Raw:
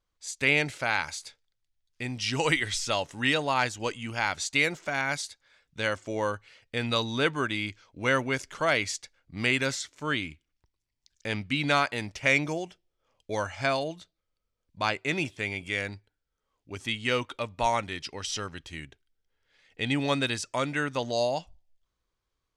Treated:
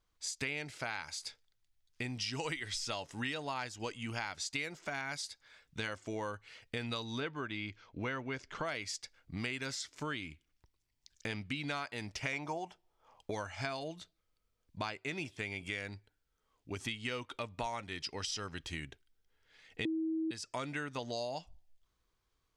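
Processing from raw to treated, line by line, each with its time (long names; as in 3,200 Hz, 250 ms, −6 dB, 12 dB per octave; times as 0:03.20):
0:07.20–0:08.65: high-frequency loss of the air 130 metres
0:12.33–0:13.31: parametric band 880 Hz +14.5 dB 0.87 octaves
0:19.85–0:20.31: beep over 321 Hz −15 dBFS
whole clip: notch filter 550 Hz, Q 12; dynamic equaliser 5,000 Hz, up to +7 dB, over −56 dBFS, Q 7.2; downward compressor 5 to 1, threshold −39 dBFS; level +2 dB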